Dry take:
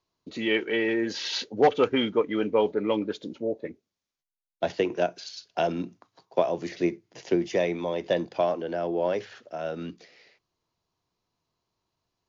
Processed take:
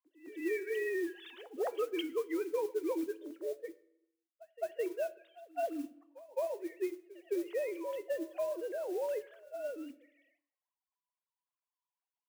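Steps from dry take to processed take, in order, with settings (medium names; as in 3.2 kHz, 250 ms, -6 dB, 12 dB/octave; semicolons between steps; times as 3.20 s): formants replaced by sine waves; compression, threshold -23 dBFS, peak gain reduction 8 dB; feedback comb 330 Hz, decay 0.4 s, harmonics odd, mix 60%; modulation noise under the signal 23 dB; pre-echo 213 ms -19 dB; on a send at -15 dB: reverberation RT60 0.85 s, pre-delay 3 ms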